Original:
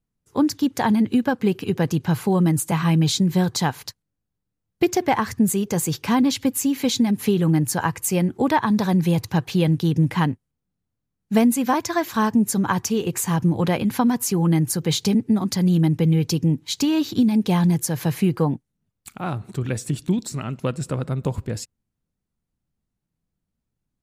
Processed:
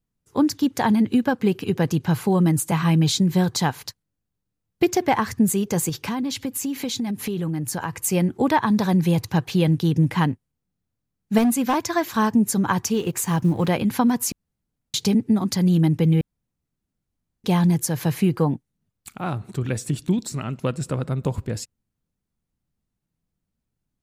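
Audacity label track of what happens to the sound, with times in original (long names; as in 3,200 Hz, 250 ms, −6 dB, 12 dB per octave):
5.890000	7.930000	downward compressor 5 to 1, threshold −23 dBFS
11.380000	11.840000	hard clipping −15 dBFS
12.940000	13.700000	mu-law and A-law mismatch coded by A
14.320000	14.940000	fill with room tone
16.210000	17.440000	fill with room tone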